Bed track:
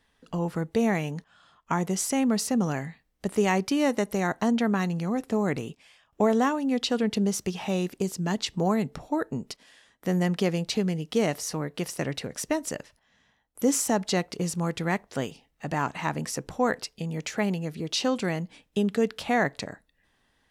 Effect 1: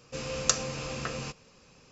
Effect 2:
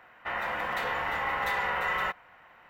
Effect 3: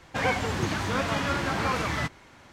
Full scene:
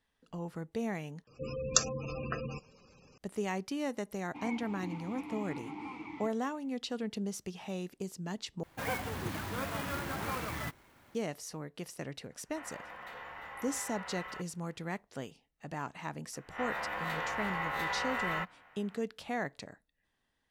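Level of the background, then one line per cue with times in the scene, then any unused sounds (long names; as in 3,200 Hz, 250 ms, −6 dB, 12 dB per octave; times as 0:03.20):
bed track −11.5 dB
0:01.27: overwrite with 1 −1 dB + gate on every frequency bin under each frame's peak −15 dB strong
0:04.20: mix in 3 −3.5 dB + formant filter u
0:08.63: overwrite with 3 −9.5 dB + converter with an unsteady clock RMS 0.033 ms
0:12.30: mix in 2 −15.5 dB
0:16.33: mix in 2 −6.5 dB + peak hold with a rise ahead of every peak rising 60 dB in 0.33 s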